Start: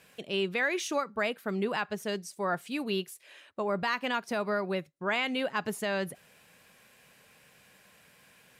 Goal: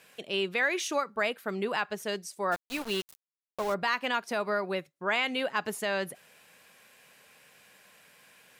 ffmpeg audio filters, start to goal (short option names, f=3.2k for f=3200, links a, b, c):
-filter_complex "[0:a]lowshelf=f=200:g=-11.5,asplit=3[a][b][c];[a]afade=t=out:st=2.51:d=0.02[d];[b]aeval=exprs='val(0)*gte(abs(val(0)),0.0141)':c=same,afade=t=in:st=2.51:d=0.02,afade=t=out:st=3.73:d=0.02[e];[c]afade=t=in:st=3.73:d=0.02[f];[d][e][f]amix=inputs=3:normalize=0,volume=2dB"